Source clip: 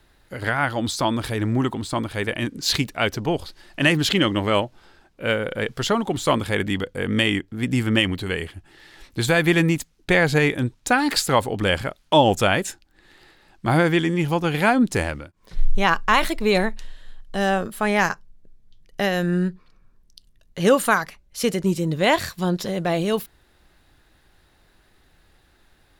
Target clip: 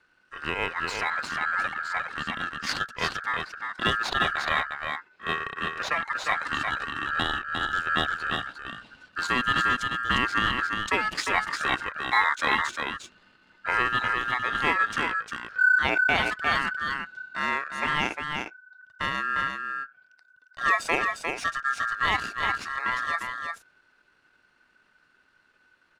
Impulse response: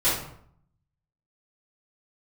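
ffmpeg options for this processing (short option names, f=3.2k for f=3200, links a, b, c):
-filter_complex "[0:a]asetrate=32097,aresample=44100,atempo=1.37395,aeval=exprs='val(0)*sin(2*PI*1500*n/s)':c=same,adynamicsmooth=sensitivity=4.5:basefreq=7.4k,asplit=2[a][b];[b]aecho=0:1:353:0.562[c];[a][c]amix=inputs=2:normalize=0,volume=-4dB"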